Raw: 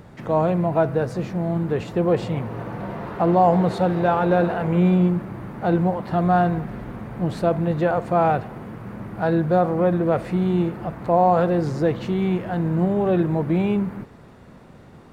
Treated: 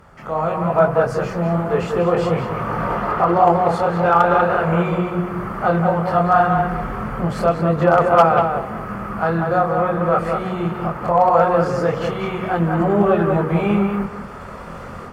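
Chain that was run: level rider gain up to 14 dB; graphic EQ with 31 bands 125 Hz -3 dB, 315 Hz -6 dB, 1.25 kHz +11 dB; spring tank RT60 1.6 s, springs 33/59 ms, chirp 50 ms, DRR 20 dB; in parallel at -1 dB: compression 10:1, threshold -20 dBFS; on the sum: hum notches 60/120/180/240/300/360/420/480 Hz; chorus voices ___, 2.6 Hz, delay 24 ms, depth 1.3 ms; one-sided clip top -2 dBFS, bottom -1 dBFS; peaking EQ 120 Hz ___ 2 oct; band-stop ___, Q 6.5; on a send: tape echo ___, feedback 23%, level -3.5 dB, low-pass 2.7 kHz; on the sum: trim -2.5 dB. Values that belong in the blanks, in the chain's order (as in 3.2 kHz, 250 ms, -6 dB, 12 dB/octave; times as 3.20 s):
6, -6.5 dB, 3.8 kHz, 192 ms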